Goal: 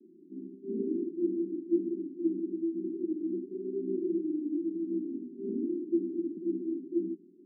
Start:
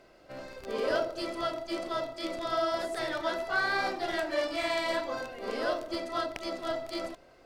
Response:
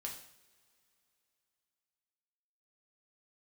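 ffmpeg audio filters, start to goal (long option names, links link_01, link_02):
-af "asuperpass=centerf=260:order=20:qfactor=1.2,volume=9dB"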